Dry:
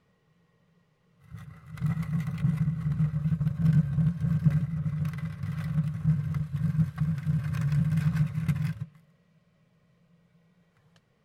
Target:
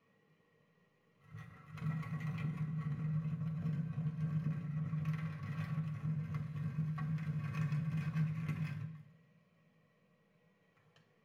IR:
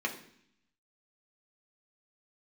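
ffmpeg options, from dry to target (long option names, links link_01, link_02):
-filter_complex "[0:a]acompressor=threshold=-28dB:ratio=4[link_01];[1:a]atrim=start_sample=2205[link_02];[link_01][link_02]afir=irnorm=-1:irlink=0,volume=-8.5dB"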